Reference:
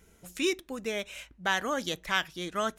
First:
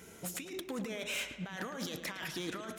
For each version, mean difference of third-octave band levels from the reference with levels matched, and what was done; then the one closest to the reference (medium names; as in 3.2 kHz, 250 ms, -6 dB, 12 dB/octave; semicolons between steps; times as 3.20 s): 11.5 dB: compressor with a negative ratio -41 dBFS, ratio -1; hard clipper -34 dBFS, distortion -12 dB; high-pass 130 Hz 12 dB/octave; on a send: filtered feedback delay 109 ms, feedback 56%, low-pass 3.7 kHz, level -9 dB; on the sum: trim +1 dB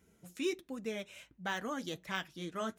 2.5 dB: high-pass 120 Hz 12 dB/octave; de-esser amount 65%; bass shelf 310 Hz +10 dB; flange 1.3 Hz, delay 2.8 ms, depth 6 ms, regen -49%; trim -5.5 dB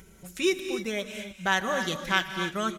5.0 dB: peaking EQ 110 Hz +4.5 dB 1.9 oct; comb 5.3 ms, depth 52%; upward compressor, threshold -47 dBFS; gated-style reverb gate 320 ms rising, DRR 7.5 dB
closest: second